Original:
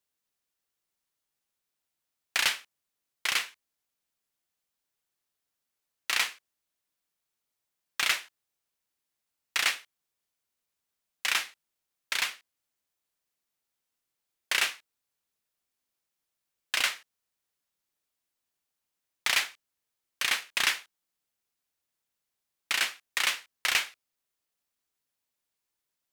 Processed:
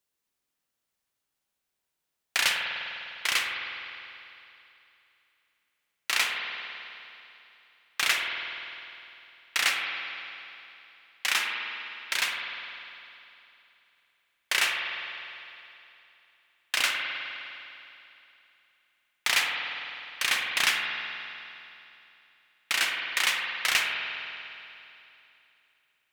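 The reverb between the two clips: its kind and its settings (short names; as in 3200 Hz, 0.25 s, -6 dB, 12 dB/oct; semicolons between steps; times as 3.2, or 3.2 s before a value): spring tank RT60 2.9 s, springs 50 ms, chirp 55 ms, DRR 1 dB; gain +1 dB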